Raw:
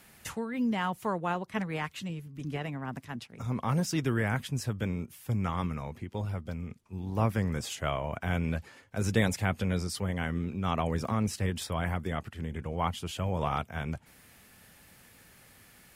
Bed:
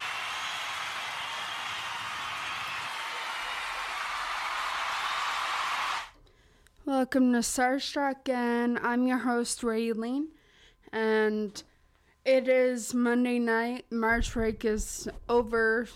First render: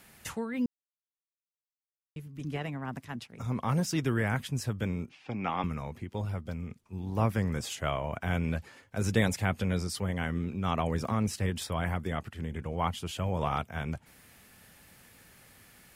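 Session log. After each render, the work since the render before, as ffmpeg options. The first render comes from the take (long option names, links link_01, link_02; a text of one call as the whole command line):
ffmpeg -i in.wav -filter_complex "[0:a]asettb=1/sr,asplit=3[link_01][link_02][link_03];[link_01]atrim=end=5.094[link_04];[link_02]atrim=start=5.09:end=5.64,asetpts=PTS-STARTPTS,afade=type=in:duration=0.004:curve=qsin,afade=type=out:start_time=0.546:duration=0.004:curve=qsin,highpass=210,equalizer=frequency=280:width_type=q:width=4:gain=4,equalizer=frequency=770:width_type=q:width=4:gain=8,equalizer=frequency=2500:width_type=q:width=4:gain=9,lowpass=frequency=4900:width=0.5412,lowpass=frequency=4900:width=1.3066[link_05];[link_03]atrim=start=5.636[link_06];[link_04][link_05]acrossfade=duration=0.004:curve1=hsin:curve2=qsin[link_07];[link_07][link_06]acrossfade=duration=0.004:curve1=qsin:curve2=hsin,asplit=3[link_08][link_09][link_10];[link_08]atrim=end=0.66,asetpts=PTS-STARTPTS,afade=type=out:start_time=0.656:duration=0.004:curve=hsin[link_11];[link_09]atrim=start=0.66:end=2.16,asetpts=PTS-STARTPTS,volume=0[link_12];[link_10]atrim=start=2.16,asetpts=PTS-STARTPTS,afade=type=in:duration=0.004:curve=hsin[link_13];[link_11][link_12][link_13]concat=n=3:v=0:a=1" out.wav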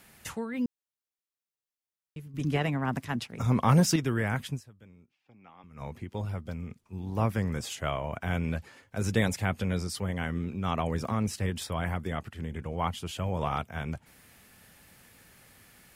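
ffmpeg -i in.wav -filter_complex "[0:a]asettb=1/sr,asplit=3[link_01][link_02][link_03];[link_01]atrim=end=2.344[link_04];[link_02]atrim=start=2.34:end=3.96,asetpts=PTS-STARTPTS,afade=type=in:duration=0.004:curve=qsin,afade=type=out:start_time=1.616:duration=0.004:curve=qsin,acontrast=89[link_05];[link_03]atrim=start=3.956[link_06];[link_04][link_05]acrossfade=duration=0.004:curve1=hsin:curve2=qsin[link_07];[link_07][link_06]acrossfade=duration=0.004:curve1=qsin:curve2=hsin,asplit=3[link_08][link_09][link_10];[link_08]atrim=end=4.93,asetpts=PTS-STARTPTS,afade=type=out:start_time=4.54:duration=0.39:curve=exp:silence=0.0794328[link_11];[link_09]atrim=start=4.93:end=5.43,asetpts=PTS-STARTPTS,volume=-22dB[link_12];[link_10]atrim=start=5.43,asetpts=PTS-STARTPTS,afade=type=in:duration=0.39:curve=exp:silence=0.0794328[link_13];[link_11][link_12][link_13]concat=n=3:v=0:a=1" out.wav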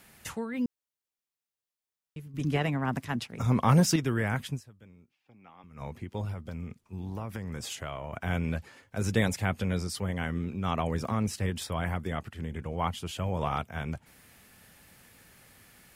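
ffmpeg -i in.wav -filter_complex "[0:a]asettb=1/sr,asplit=3[link_01][link_02][link_03];[link_01]atrim=end=6.324[link_04];[link_02]atrim=start=6.32:end=8.14,asetpts=PTS-STARTPTS,afade=type=in:duration=0.004:curve=qsin,afade=type=out:start_time=1.816:duration=0.004:curve=qsin,acompressor=threshold=-32dB:ratio=6:attack=3.2:release=140:knee=1:detection=peak[link_05];[link_03]atrim=start=8.136[link_06];[link_04][link_05]acrossfade=duration=0.004:curve1=hsin:curve2=qsin[link_07];[link_07][link_06]acrossfade=duration=0.004:curve1=qsin:curve2=hsin" out.wav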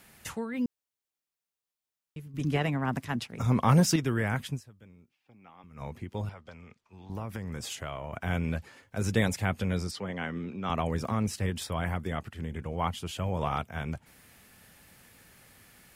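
ffmpeg -i in.wav -filter_complex "[0:a]asettb=1/sr,asplit=3[link_01][link_02][link_03];[link_01]atrim=end=6.294[link_04];[link_02]atrim=start=6.29:end=7.1,asetpts=PTS-STARTPTS,afade=type=in:duration=0.004:curve=qsin,afade=type=out:start_time=0.806:duration=0.004:curve=qsin,acrossover=split=500 6800:gain=0.224 1 0.112[link_05][link_06][link_07];[link_05][link_06][link_07]amix=inputs=3:normalize=0[link_08];[link_03]atrim=start=7.096[link_09];[link_04][link_08]acrossfade=duration=0.004:curve1=hsin:curve2=qsin[link_10];[link_10][link_09]acrossfade=duration=0.004:curve1=qsin:curve2=hsin,asettb=1/sr,asplit=3[link_11][link_12][link_13];[link_11]atrim=end=9.914[link_14];[link_12]atrim=start=9.91:end=10.7,asetpts=PTS-STARTPTS,afade=type=in:duration=0.004:curve=qsin,afade=type=out:start_time=0.786:duration=0.004:curve=qsin,acrossover=split=160 6100:gain=0.178 1 0.158[link_15][link_16][link_17];[link_15][link_16][link_17]amix=inputs=3:normalize=0[link_18];[link_13]atrim=start=10.696[link_19];[link_14][link_18]acrossfade=duration=0.004:curve1=hsin:curve2=qsin[link_20];[link_20][link_19]acrossfade=duration=0.004:curve1=qsin:curve2=hsin" out.wav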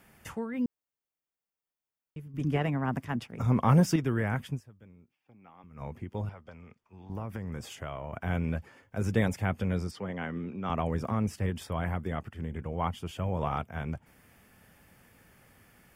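ffmpeg -i in.wav -af "equalizer=frequency=7500:width=0.33:gain=-8.5,bandreject=frequency=4000:width=6.7" out.wav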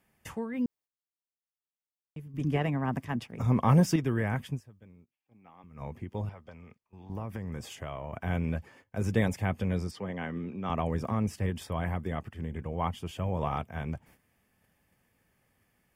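ffmpeg -i in.wav -af "agate=range=-12dB:threshold=-56dB:ratio=16:detection=peak,bandreject=frequency=1400:width=9.5" out.wav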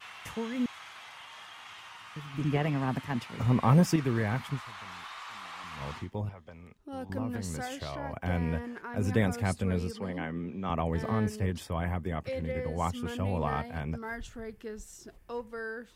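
ffmpeg -i in.wav -i bed.wav -filter_complex "[1:a]volume=-12.5dB[link_01];[0:a][link_01]amix=inputs=2:normalize=0" out.wav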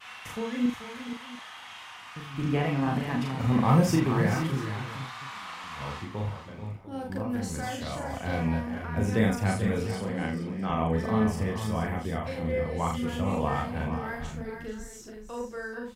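ffmpeg -i in.wav -filter_complex "[0:a]asplit=2[link_01][link_02];[link_02]adelay=37,volume=-4dB[link_03];[link_01][link_03]amix=inputs=2:normalize=0,aecho=1:1:41|435|473|696:0.562|0.266|0.335|0.15" out.wav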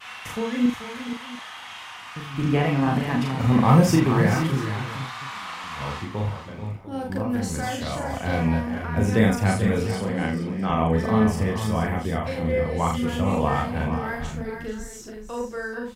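ffmpeg -i in.wav -af "volume=5.5dB" out.wav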